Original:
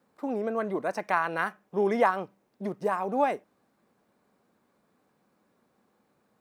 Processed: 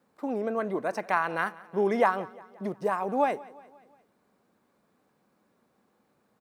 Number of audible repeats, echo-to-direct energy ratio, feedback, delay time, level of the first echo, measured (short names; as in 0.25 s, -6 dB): 3, -19.5 dB, 53%, 0.176 s, -21.0 dB